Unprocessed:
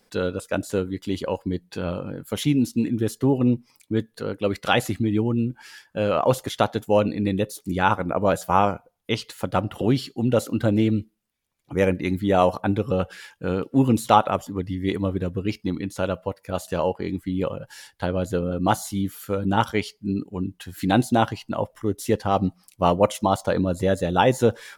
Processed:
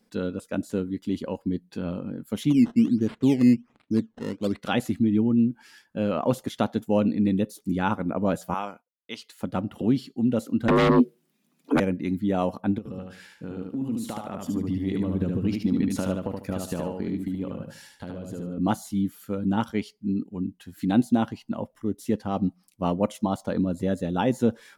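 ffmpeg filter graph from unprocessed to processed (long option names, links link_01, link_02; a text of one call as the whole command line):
ffmpeg -i in.wav -filter_complex "[0:a]asettb=1/sr,asplit=3[link_01][link_02][link_03];[link_01]atrim=end=2.504[link_04];[link_02]atrim=start=2.5:end=4.62,asetpts=PTS-STARTPTS,afade=type=in:duration=0.004:curve=qsin,afade=type=out:start_time=2.116:duration=0.004:curve=qsin,acrusher=samples=13:mix=1:aa=0.000001:lfo=1:lforange=13:lforate=1.3,adynamicsmooth=sensitivity=2:basefreq=5300[link_05];[link_03]atrim=start=4.616[link_06];[link_04][link_05]acrossfade=duration=0.004:curve1=hsin:curve2=qsin[link_07];[link_07][link_06]acrossfade=duration=0.004:curve1=qsin:curve2=hsin,asettb=1/sr,asplit=3[link_08][link_09][link_10];[link_08]atrim=end=8.544[link_11];[link_09]atrim=start=8.54:end=9.4,asetpts=PTS-STARTPTS,afade=type=in:duration=0.004:curve=qsin,afade=type=out:start_time=0.856:duration=0.004:curve=qsin,highpass=frequency=1300:poles=1,agate=range=-33dB:threshold=-50dB:ratio=3:release=100:detection=peak[link_12];[link_10]atrim=start=9.396[link_13];[link_11][link_12]acrossfade=duration=0.004:curve1=hsin:curve2=qsin[link_14];[link_14][link_13]acrossfade=duration=0.004:curve1=qsin:curve2=hsin,asettb=1/sr,asplit=3[link_15][link_16][link_17];[link_15]atrim=end=10.684[link_18];[link_16]atrim=start=10.68:end=11.8,asetpts=PTS-STARTPTS,afade=type=in:duration=0.004:curve=qsin,afade=type=out:start_time=1.116:duration=0.004:curve=qsin,afreqshift=150,aeval=exprs='0.376*sin(PI/2*4.47*val(0)/0.376)':channel_layout=same[link_19];[link_17]atrim=start=11.796[link_20];[link_18][link_19]acrossfade=duration=0.004:curve1=hsin:curve2=qsin[link_21];[link_21][link_20]acrossfade=duration=0.004:curve1=qsin:curve2=hsin,asettb=1/sr,asplit=3[link_22][link_23][link_24];[link_22]atrim=end=12.784[link_25];[link_23]atrim=start=12.78:end=18.58,asetpts=PTS-STARTPTS,afade=type=in:duration=0.004:curve=qsin,afade=type=out:start_time=5.796:duration=0.004:curve=qsin,acompressor=threshold=-29dB:ratio=10:attack=3.2:release=140:knee=1:detection=peak,aecho=1:1:74|148|222|296:0.668|0.174|0.0452|0.0117,atrim=end_sample=255780[link_26];[link_24]atrim=start=18.576[link_27];[link_25][link_26]acrossfade=duration=0.004:curve1=hsin:curve2=qsin[link_28];[link_28][link_27]acrossfade=duration=0.004:curve1=qsin:curve2=hsin,equalizer=frequency=230:width=1.4:gain=12,dynaudnorm=framelen=330:gausssize=11:maxgain=11.5dB,volume=-8.5dB" out.wav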